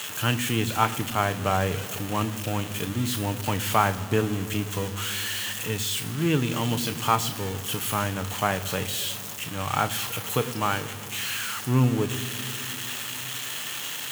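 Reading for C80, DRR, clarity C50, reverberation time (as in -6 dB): 16.0 dB, 9.0 dB, 15.5 dB, 2.7 s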